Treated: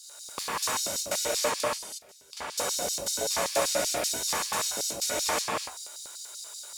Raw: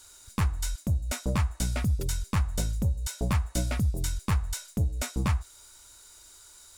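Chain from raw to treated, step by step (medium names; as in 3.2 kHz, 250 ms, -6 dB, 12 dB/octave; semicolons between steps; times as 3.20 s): 1.58–2.37 s: inverted gate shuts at -23 dBFS, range -25 dB; gated-style reverb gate 390 ms flat, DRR -7.5 dB; LFO high-pass square 5.2 Hz 570–4600 Hz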